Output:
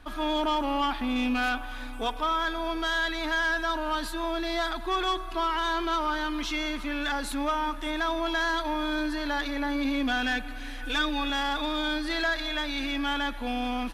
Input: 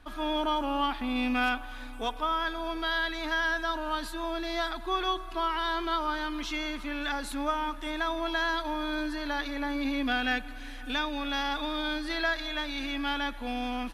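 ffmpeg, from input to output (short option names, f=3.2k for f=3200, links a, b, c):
-filter_complex "[0:a]asoftclip=type=tanh:threshold=-24dB,asettb=1/sr,asplit=3[a][b][c];[a]atrim=end=10.824[d];[b]atrim=start=10.82:end=11.3,asetpts=PTS-STARTPTS,afade=t=in:d=0.004:c=qsin,afade=t=out:st=0.476:d=0.004:c=qsin,aecho=1:1:6:0.65,atrim=end_sample=21168[e];[c]atrim=start=11.296[f];[d][e]acrossfade=d=0.004:c1=hsin:c2=qsin[g];[g][f]acrossfade=d=0.004:c1=qsin:c2=hsin,volume=4dB"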